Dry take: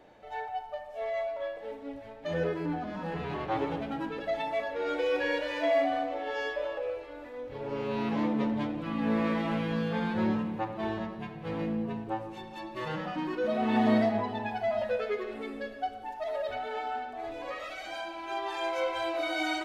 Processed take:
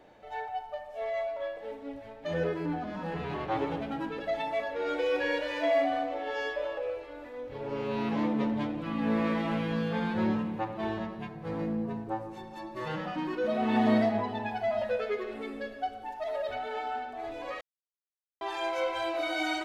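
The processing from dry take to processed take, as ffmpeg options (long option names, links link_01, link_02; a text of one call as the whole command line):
ffmpeg -i in.wav -filter_complex "[0:a]asettb=1/sr,asplit=3[link_01][link_02][link_03];[link_01]atrim=end=11.284[link_04];[link_02]atrim=start=11.28:end=12.85,asetpts=PTS-STARTPTS,afade=type=in:duration=0.004:curve=qsin,afade=type=out:start_time=1.566:duration=0.004:curve=qsin,equalizer=frequency=2900:width_type=o:width=0.88:gain=-8[link_05];[link_03]atrim=start=12.846[link_06];[link_04][link_05]acrossfade=duration=0.004:curve1=hsin:curve2=qsin[link_07];[link_07][link_06]acrossfade=duration=0.004:curve1=qsin:curve2=hsin,asplit=3[link_08][link_09][link_10];[link_08]atrim=end=17.61,asetpts=PTS-STARTPTS,afade=type=out:start_time=17.606:duration=0.004:curve=hsin[link_11];[link_09]atrim=start=17.61:end=18.41,asetpts=PTS-STARTPTS,volume=0[link_12];[link_10]atrim=start=18.41,asetpts=PTS-STARTPTS,afade=type=in:duration=0.004:curve=hsin[link_13];[link_11][link_12][link_13]concat=n=3:v=0:a=1" out.wav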